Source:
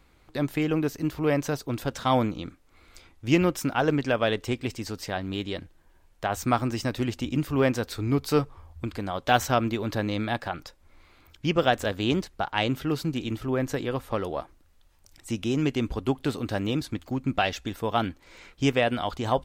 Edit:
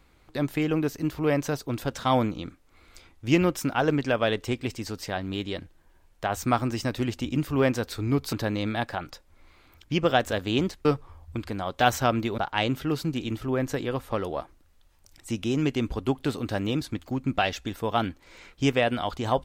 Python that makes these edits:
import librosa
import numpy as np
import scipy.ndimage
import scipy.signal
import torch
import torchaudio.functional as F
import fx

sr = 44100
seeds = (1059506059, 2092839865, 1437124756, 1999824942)

y = fx.edit(x, sr, fx.move(start_s=8.33, length_s=1.53, to_s=12.38), tone=tone)